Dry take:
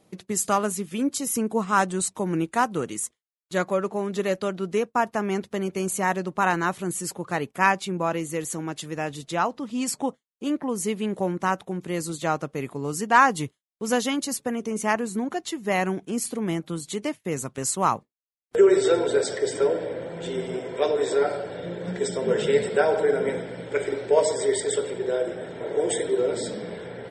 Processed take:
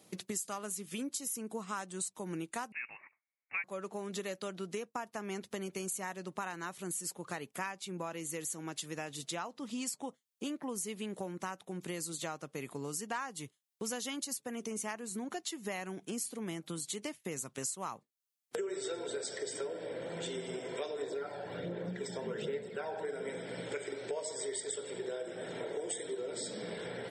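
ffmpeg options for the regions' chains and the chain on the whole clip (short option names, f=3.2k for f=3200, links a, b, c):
-filter_complex "[0:a]asettb=1/sr,asplit=3[a][b][c];[a]atrim=end=2.724[d];[b]atrim=start=2.72:end=3.64,asetpts=PTS-STARTPTS,afade=t=in:d=0.004:c=qsin,afade=t=out:st=0.916:d=0.004:c=qsin,highpass=f=780:t=q:w=6.4,lowpass=f=2.6k:t=q:w=0.5098,lowpass=f=2.6k:t=q:w=0.6013,lowpass=f=2.6k:t=q:w=0.9,lowpass=f=2.6k:t=q:w=2.563,afreqshift=-3000[e];[c]atrim=start=3.636[f];[d][e]acrossfade=d=0.004:c1=hsin:c2=qsin[g];[g][f]acrossfade=d=0.004:c1=qsin:c2=hsin,asettb=1/sr,asplit=3[h][i][j];[h]atrim=end=21.024[k];[i]atrim=start=21.02:end=23.05,asetpts=PTS-STARTPTS,afade=t=in:d=0.004:c=qsin,afade=t=out:st=2.026:d=0.004:c=qsin,aemphasis=mode=reproduction:type=75fm,aphaser=in_gain=1:out_gain=1:delay=1.2:decay=0.46:speed=1.3:type=sinusoidal[l];[j]atrim=start=23.046[m];[k][l]acrossfade=d=0.004:c1=hsin:c2=qsin[n];[n][m]acrossfade=d=0.004:c1=qsin:c2=hsin,highpass=110,highshelf=f=2.6k:g=10,acompressor=threshold=-34dB:ratio=6,volume=-3dB"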